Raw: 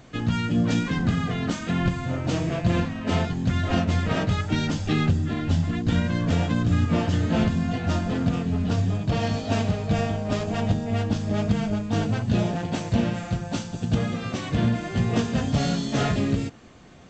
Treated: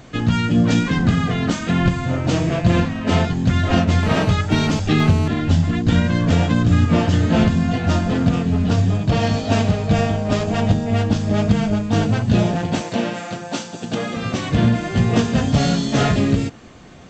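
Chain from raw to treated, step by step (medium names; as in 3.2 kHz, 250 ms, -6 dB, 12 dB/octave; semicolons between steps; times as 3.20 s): 4.03–5.28 s: mobile phone buzz -35 dBFS; 12.81–14.17 s: high-pass 290 Hz 12 dB/octave; trim +6.5 dB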